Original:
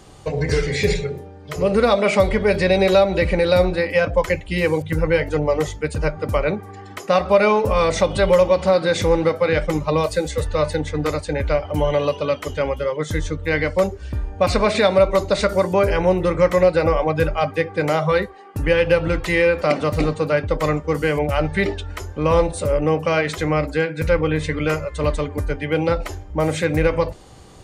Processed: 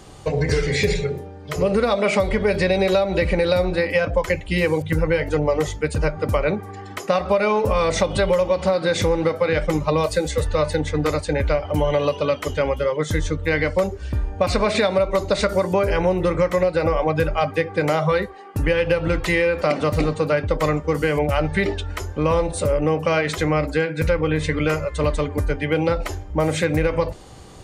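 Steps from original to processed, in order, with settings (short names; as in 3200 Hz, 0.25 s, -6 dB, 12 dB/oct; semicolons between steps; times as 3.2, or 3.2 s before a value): compressor, threshold -17 dBFS, peak gain reduction 8 dB; gain +2 dB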